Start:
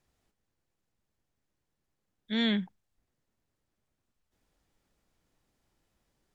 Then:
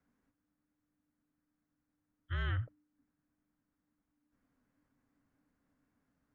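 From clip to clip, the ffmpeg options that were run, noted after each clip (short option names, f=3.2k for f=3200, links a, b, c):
-af "afreqshift=-300,highshelf=f=2.4k:t=q:w=1.5:g=-10,alimiter=level_in=1.5dB:limit=-24dB:level=0:latency=1:release=34,volume=-1.5dB,volume=-2.5dB"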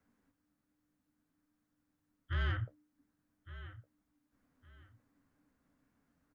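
-af "flanger=delay=9.1:depth=6.9:regen=-43:speed=0.61:shape=sinusoidal,aecho=1:1:1161|2322:0.158|0.0396,asoftclip=type=tanh:threshold=-32dB,volume=6.5dB"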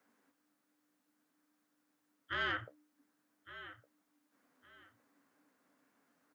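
-af "highpass=360,volume=6dB"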